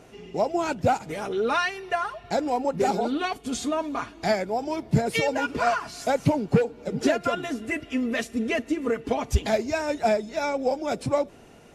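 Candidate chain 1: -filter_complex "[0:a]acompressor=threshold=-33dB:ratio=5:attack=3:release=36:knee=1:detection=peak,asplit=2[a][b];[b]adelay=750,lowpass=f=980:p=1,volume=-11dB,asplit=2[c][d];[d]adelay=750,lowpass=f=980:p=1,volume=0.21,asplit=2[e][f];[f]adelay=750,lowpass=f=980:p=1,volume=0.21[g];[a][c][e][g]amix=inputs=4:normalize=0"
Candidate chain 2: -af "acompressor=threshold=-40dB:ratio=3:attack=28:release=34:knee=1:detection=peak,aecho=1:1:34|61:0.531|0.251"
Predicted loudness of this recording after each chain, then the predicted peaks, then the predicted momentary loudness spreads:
-35.0, -34.5 LUFS; -22.5, -20.5 dBFS; 2, 3 LU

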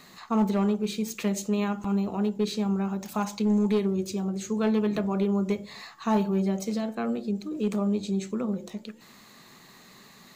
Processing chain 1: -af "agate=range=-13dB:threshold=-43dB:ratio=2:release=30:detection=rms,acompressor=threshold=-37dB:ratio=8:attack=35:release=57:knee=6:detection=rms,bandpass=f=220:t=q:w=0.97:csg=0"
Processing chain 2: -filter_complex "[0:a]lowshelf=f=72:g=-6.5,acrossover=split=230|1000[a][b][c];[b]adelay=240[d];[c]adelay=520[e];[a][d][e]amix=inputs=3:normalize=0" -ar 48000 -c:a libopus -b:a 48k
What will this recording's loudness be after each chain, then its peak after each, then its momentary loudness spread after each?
-39.5, -31.0 LUFS; -26.5, -15.5 dBFS; 4, 7 LU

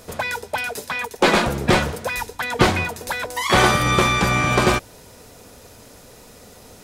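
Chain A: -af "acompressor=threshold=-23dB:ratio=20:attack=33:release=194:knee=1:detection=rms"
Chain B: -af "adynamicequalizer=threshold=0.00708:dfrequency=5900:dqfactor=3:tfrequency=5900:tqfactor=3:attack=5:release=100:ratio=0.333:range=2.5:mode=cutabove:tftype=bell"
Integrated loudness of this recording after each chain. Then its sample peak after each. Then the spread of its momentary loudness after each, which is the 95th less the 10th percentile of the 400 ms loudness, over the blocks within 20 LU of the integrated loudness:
-26.5, -19.5 LUFS; -8.0, -2.0 dBFS; 19, 10 LU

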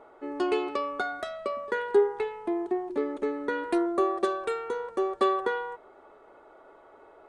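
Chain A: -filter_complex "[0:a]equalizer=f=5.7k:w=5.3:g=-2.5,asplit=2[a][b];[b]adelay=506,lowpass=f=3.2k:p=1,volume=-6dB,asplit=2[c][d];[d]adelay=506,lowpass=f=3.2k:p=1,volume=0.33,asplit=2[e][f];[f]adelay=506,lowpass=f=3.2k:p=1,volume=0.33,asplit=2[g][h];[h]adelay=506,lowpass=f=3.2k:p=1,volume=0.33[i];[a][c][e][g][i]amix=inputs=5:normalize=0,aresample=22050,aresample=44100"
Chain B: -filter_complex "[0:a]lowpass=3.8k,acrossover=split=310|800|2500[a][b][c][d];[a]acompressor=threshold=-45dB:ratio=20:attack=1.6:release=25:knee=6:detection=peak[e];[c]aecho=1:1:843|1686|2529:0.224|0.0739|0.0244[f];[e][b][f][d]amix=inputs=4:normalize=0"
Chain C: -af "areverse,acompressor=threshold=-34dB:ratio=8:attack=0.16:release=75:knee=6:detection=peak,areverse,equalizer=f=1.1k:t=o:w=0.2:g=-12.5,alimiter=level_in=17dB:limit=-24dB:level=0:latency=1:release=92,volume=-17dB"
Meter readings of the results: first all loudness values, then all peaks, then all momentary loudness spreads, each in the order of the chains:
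-28.5, -30.5, -48.5 LUFS; -12.0, -14.0, -41.0 dBFS; 12, 16, 8 LU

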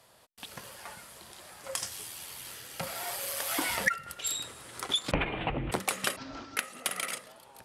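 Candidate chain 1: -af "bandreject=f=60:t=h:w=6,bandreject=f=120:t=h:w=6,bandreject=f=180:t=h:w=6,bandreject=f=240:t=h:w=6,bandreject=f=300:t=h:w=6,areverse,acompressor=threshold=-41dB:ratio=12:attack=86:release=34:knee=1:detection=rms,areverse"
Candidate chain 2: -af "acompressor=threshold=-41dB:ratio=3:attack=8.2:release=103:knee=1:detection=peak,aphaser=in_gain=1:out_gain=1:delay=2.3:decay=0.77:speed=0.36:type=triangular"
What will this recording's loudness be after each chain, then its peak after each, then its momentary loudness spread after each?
-39.0, -37.0 LUFS; -22.0, -17.0 dBFS; 10, 9 LU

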